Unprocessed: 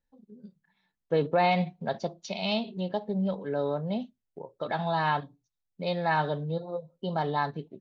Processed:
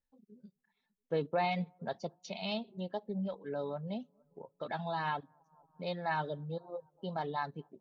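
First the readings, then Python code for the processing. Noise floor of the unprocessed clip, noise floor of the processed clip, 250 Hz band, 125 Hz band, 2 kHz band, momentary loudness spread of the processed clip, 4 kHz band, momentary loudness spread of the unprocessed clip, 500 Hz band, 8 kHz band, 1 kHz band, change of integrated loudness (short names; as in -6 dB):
-83 dBFS, -85 dBFS, -8.0 dB, -8.5 dB, -7.5 dB, 9 LU, -8.0 dB, 10 LU, -8.0 dB, n/a, -8.0 dB, -8.0 dB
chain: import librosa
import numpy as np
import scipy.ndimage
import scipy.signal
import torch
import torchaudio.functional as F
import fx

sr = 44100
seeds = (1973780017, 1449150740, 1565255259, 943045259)

y = fx.echo_bbd(x, sr, ms=228, stages=2048, feedback_pct=60, wet_db=-23.5)
y = fx.dereverb_blind(y, sr, rt60_s=0.69)
y = y * librosa.db_to_amplitude(-7.0)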